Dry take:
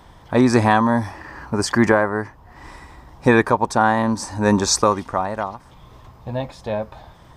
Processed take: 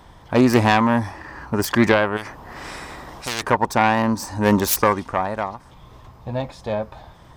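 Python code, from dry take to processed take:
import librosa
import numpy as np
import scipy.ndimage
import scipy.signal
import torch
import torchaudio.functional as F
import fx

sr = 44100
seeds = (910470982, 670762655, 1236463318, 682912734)

y = fx.self_delay(x, sr, depth_ms=0.19)
y = fx.spectral_comp(y, sr, ratio=4.0, at=(2.16, 3.42), fade=0.02)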